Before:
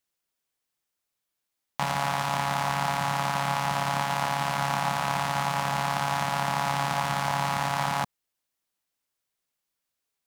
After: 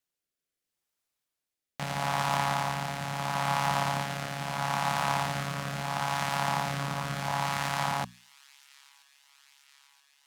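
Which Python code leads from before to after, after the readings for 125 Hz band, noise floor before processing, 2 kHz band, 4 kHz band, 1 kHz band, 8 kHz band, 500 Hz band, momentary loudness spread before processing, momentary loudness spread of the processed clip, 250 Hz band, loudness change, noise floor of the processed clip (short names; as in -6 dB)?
-1.5 dB, -84 dBFS, -2.5 dB, -2.5 dB, -3.5 dB, -2.5 dB, -2.5 dB, 1 LU, 6 LU, -2.0 dB, -3.0 dB, under -85 dBFS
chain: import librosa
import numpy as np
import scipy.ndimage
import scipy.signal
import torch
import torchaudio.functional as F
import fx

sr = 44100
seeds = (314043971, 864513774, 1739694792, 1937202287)

y = fx.hum_notches(x, sr, base_hz=60, count=4)
y = fx.rotary(y, sr, hz=0.75)
y = fx.echo_wet_highpass(y, sr, ms=978, feedback_pct=67, hz=2800.0, wet_db=-20)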